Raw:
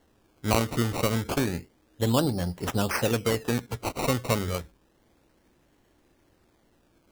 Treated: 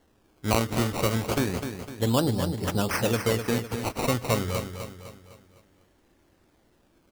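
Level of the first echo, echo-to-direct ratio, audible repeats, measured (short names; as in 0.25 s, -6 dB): -8.0 dB, -7.0 dB, 4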